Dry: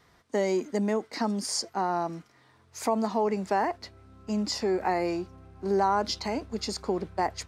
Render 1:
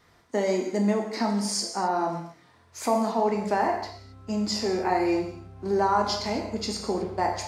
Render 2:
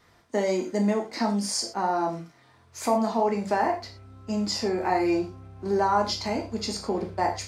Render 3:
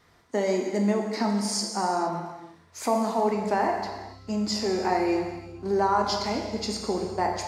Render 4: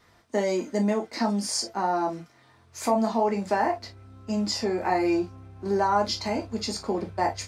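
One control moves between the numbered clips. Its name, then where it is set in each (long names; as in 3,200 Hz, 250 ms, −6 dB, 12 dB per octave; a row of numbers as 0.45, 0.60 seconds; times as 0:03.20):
reverb whose tail is shaped and stops, gate: 290, 140, 500, 80 milliseconds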